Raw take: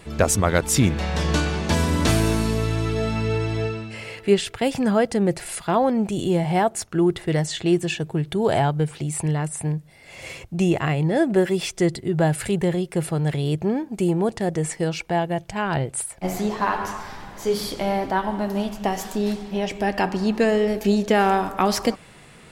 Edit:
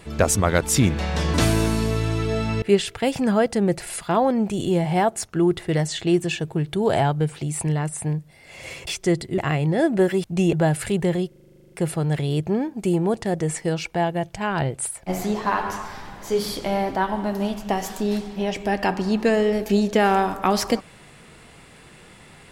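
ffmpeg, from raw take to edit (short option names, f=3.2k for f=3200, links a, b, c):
-filter_complex "[0:a]asplit=18[a][b][c][d][e][f][g][h][i][j][k][l][m][n][o][p][q][r];[a]atrim=end=1.342[s];[b]atrim=start=2.008:end=3.292[t];[c]atrim=start=4.208:end=10.462[u];[d]atrim=start=11.608:end=12.122[v];[e]atrim=start=10.748:end=11.612[w];[f]atrim=start=10.458:end=10.752[x];[g]atrim=start=12.118:end=12.912[y];[h]atrim=start=12.868:end=12.912[z];[i]atrim=start=12.868:end=12.912[aa];[j]atrim=start=12.868:end=12.912[ab];[k]atrim=start=12.868:end=12.912[ac];[l]atrim=start=12.868:end=12.912[ad];[m]atrim=start=12.868:end=12.912[ae];[n]atrim=start=12.868:end=12.912[af];[o]atrim=start=12.868:end=12.912[ag];[p]atrim=start=12.868:end=12.912[ah];[q]atrim=start=12.868:end=12.912[ai];[r]atrim=start=12.868[aj];[s][t]acrossfade=d=0.004:c1=hsin:c2=hsin[ak];[ak][u]acrossfade=d=0.004:c1=hsin:c2=hsin[al];[al][v]acrossfade=d=0.004:c1=hsin:c2=hsin[am];[am][w]acrossfade=d=0.004:c1=hsin:c2=hsin[an];[an][x]acrossfade=d=0.004:c1=hsin:c2=hsin[ao];[ao][y]acrossfade=d=0.004:c1=hsin:c2=hsin[ap];[ap][z]acrossfade=d=0.004:c1=hsin:c2=hsin[aq];[aq][aa]acrossfade=d=0.004:c1=hsin:c2=hsin[ar];[ar][ab]acrossfade=d=0.004:c1=hsin:c2=hsin[as];[as][ac]acrossfade=d=0.004:c1=hsin:c2=hsin[at];[at][ad]acrossfade=d=0.004:c1=hsin:c2=hsin[au];[au][ae]acrossfade=d=0.004:c1=hsin:c2=hsin[av];[av][af]acrossfade=d=0.004:c1=hsin:c2=hsin[aw];[aw][ag]acrossfade=d=0.004:c1=hsin:c2=hsin[ax];[ax][ah]acrossfade=d=0.004:c1=hsin:c2=hsin[ay];[ay][ai]acrossfade=d=0.004:c1=hsin:c2=hsin[az];[az][aj]acrossfade=d=0.004:c1=hsin:c2=hsin"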